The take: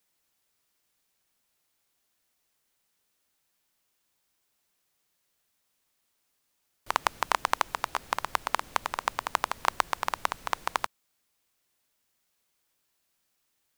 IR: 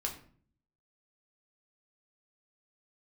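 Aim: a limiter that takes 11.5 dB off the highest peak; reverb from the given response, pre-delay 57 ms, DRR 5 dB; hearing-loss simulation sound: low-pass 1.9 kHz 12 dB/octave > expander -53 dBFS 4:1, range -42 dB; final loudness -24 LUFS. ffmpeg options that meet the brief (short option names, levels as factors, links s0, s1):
-filter_complex "[0:a]alimiter=limit=0.211:level=0:latency=1,asplit=2[s0][s1];[1:a]atrim=start_sample=2205,adelay=57[s2];[s1][s2]afir=irnorm=-1:irlink=0,volume=0.447[s3];[s0][s3]amix=inputs=2:normalize=0,lowpass=1900,agate=range=0.00794:threshold=0.00224:ratio=4,volume=5.31"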